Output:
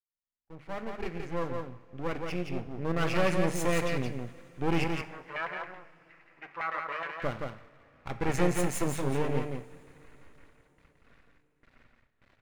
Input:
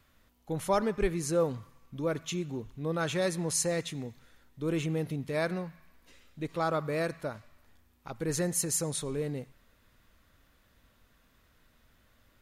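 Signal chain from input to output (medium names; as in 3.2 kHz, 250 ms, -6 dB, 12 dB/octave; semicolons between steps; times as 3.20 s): fade-in on the opening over 3.96 s; hum notches 50/100/150/200 Hz; gate with hold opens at -54 dBFS; level-controlled noise filter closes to 2.8 kHz, open at -24 dBFS; resonant high shelf 3.1 kHz -8.5 dB, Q 3; half-wave rectifier; 4.84–7.22 s: LFO band-pass saw down 9.6 Hz 920–2100 Hz; delay 171 ms -4.5 dB; two-slope reverb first 0.53 s, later 4.5 s, from -18 dB, DRR 10.5 dB; trim +7 dB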